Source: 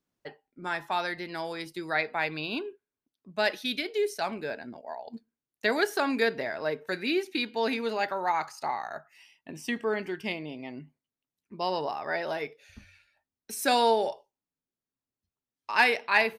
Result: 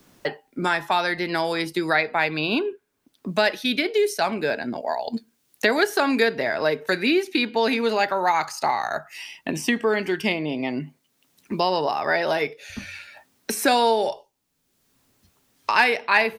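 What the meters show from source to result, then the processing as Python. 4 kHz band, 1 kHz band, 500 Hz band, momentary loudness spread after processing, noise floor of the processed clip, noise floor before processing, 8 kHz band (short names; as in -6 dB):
+7.0 dB, +6.5 dB, +7.0 dB, 13 LU, -71 dBFS, under -85 dBFS, +8.0 dB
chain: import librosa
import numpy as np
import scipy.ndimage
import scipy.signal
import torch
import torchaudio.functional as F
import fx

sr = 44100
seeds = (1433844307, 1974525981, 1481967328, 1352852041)

y = fx.band_squash(x, sr, depth_pct=70)
y = y * 10.0 ** (7.5 / 20.0)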